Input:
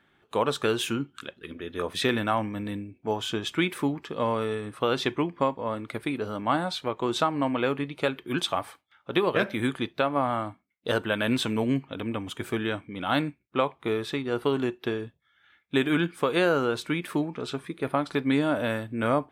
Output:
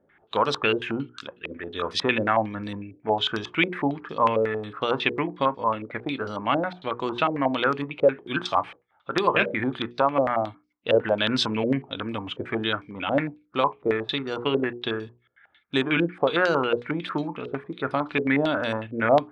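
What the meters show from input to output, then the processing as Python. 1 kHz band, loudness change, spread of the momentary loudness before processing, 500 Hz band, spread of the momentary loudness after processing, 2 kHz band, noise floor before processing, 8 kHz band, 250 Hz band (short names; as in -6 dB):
+4.5 dB, +2.5 dB, 8 LU, +3.0 dB, 10 LU, +4.0 dB, -68 dBFS, n/a, 0.0 dB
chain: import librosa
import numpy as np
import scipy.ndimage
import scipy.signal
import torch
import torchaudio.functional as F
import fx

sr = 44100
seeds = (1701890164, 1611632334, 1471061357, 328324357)

y = fx.hum_notches(x, sr, base_hz=60, count=8)
y = fx.filter_held_lowpass(y, sr, hz=11.0, low_hz=530.0, high_hz=5100.0)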